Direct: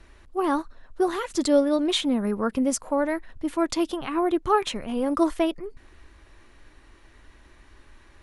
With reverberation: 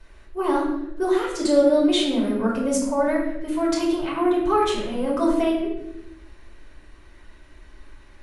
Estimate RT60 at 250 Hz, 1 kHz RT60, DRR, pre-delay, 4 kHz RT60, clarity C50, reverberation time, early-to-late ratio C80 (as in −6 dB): 1.3 s, 0.70 s, −4.5 dB, 3 ms, 0.65 s, 3.0 dB, 0.85 s, 6.0 dB